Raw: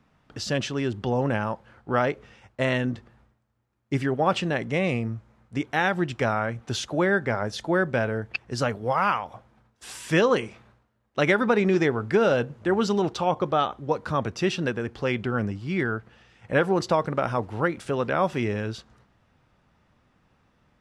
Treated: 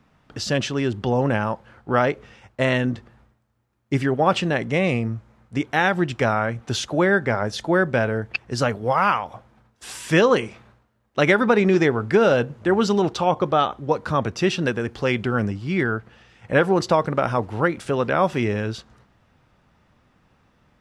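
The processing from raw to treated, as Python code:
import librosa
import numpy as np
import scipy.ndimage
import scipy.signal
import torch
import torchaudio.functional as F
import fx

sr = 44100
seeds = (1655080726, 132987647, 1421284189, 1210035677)

y = fx.high_shelf(x, sr, hz=5000.0, db=5.0, at=(14.65, 15.51))
y = y * 10.0 ** (4.0 / 20.0)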